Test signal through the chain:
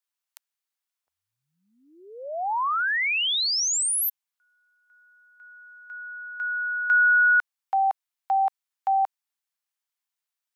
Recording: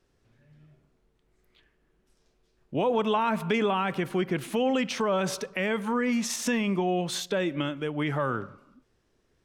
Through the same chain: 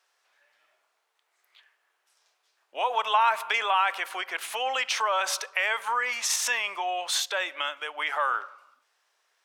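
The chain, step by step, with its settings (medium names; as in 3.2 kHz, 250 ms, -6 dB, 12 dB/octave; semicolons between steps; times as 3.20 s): high-pass 760 Hz 24 dB/octave; trim +6 dB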